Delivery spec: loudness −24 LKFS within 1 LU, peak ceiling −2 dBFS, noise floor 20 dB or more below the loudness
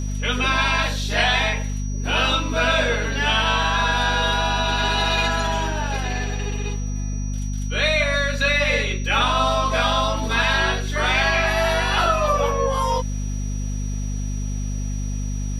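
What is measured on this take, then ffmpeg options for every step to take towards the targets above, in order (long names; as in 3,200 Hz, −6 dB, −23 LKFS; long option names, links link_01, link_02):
mains hum 50 Hz; hum harmonics up to 250 Hz; level of the hum −23 dBFS; interfering tone 5,800 Hz; level of the tone −39 dBFS; integrated loudness −21.0 LKFS; sample peak −6.5 dBFS; target loudness −24.0 LKFS
→ -af "bandreject=frequency=50:width_type=h:width=6,bandreject=frequency=100:width_type=h:width=6,bandreject=frequency=150:width_type=h:width=6,bandreject=frequency=200:width_type=h:width=6,bandreject=frequency=250:width_type=h:width=6"
-af "bandreject=frequency=5800:width=30"
-af "volume=-3dB"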